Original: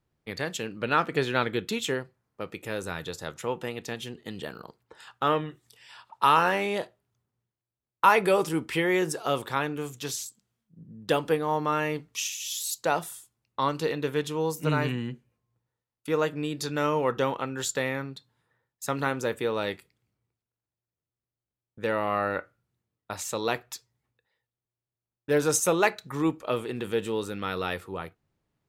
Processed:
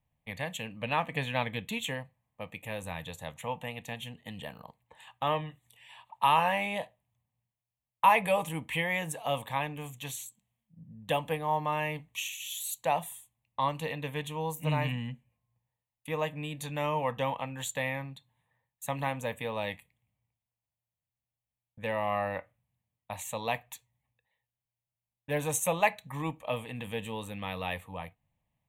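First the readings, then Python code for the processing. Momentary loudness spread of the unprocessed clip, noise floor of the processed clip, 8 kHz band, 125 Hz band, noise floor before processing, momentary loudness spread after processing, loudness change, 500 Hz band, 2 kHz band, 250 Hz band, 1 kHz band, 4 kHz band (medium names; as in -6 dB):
16 LU, under -85 dBFS, -6.0 dB, -2.0 dB, under -85 dBFS, 15 LU, -4.5 dB, -6.5 dB, -3.5 dB, -8.0 dB, -2.5 dB, -3.5 dB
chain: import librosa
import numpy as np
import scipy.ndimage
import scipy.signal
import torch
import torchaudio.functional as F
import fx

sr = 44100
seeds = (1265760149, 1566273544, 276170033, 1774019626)

y = fx.fixed_phaser(x, sr, hz=1400.0, stages=6)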